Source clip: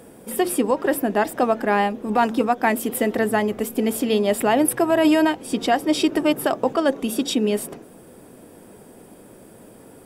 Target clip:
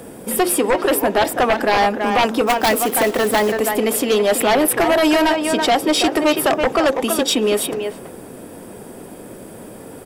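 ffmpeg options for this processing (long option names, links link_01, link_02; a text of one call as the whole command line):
ffmpeg -i in.wav -filter_complex "[0:a]acrossover=split=370|4400[link_01][link_02][link_03];[link_01]acompressor=threshold=-33dB:ratio=6[link_04];[link_04][link_02][link_03]amix=inputs=3:normalize=0,asettb=1/sr,asplit=3[link_05][link_06][link_07];[link_05]atrim=end=2.474[link_08];[link_06]atrim=start=2.47:end=3.6,asetpts=PTS-STARTPTS,afade=type=in:duration=0.004:curve=qsin,afade=type=out:start_time=1.126:duration=0.004:curve=qsin,acrusher=bits=3:mode=log:mix=0:aa=0.000001[link_09];[link_07]atrim=start=3.596[link_10];[link_08][link_09]acrossfade=duration=0.004:curve1=hsin:curve2=qsin[link_11];[link_11][link_10]acrossfade=duration=0.004:curve1=qsin:curve2=hsin,asplit=2[link_12][link_13];[link_13]adelay=330,highpass=300,lowpass=3400,asoftclip=type=hard:threshold=-16.5dB,volume=-7dB[link_14];[link_12][link_14]amix=inputs=2:normalize=0,aeval=exprs='0.531*sin(PI/2*3.16*val(0)/0.531)':channel_layout=same,volume=-5dB" out.wav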